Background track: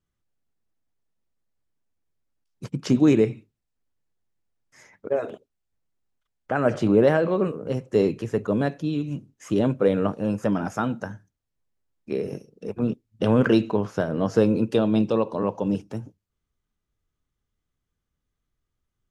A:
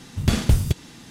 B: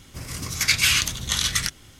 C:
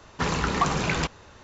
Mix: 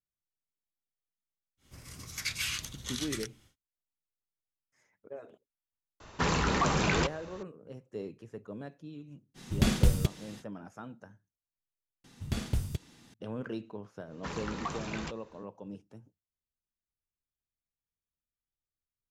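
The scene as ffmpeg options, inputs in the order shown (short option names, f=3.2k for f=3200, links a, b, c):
-filter_complex "[3:a]asplit=2[a][b];[1:a]asplit=2[c][d];[0:a]volume=-19.5dB[e];[a]alimiter=limit=-16dB:level=0:latency=1:release=26[f];[c]aecho=1:1:5.4:0.35[g];[e]asplit=2[h][i];[h]atrim=end=12.044[j];[d]atrim=end=1.1,asetpts=PTS-STARTPTS,volume=-13.5dB[k];[i]atrim=start=13.136[l];[2:a]atrim=end=1.99,asetpts=PTS-STARTPTS,volume=-15dB,afade=t=in:d=0.1,afade=t=out:st=1.89:d=0.1,adelay=1570[m];[f]atrim=end=1.43,asetpts=PTS-STARTPTS,volume=-1.5dB,afade=t=in:d=0.004:c=hsin,afade=t=out:st=1.426:d=0.004:c=hsin,adelay=6000[n];[g]atrim=end=1.1,asetpts=PTS-STARTPTS,volume=-5.5dB,afade=t=in:d=0.05,afade=t=out:st=1.05:d=0.05,adelay=9340[o];[b]atrim=end=1.43,asetpts=PTS-STARTPTS,volume=-13.5dB,afade=t=in:d=0.1,afade=t=out:st=1.33:d=0.1,adelay=14040[p];[j][k]acrossfade=d=0.004:c1=hsin:c2=hsin[q];[q][l]acrossfade=d=0.004:c1=hsin:c2=hsin[r];[r][m][n][o][p]amix=inputs=5:normalize=0"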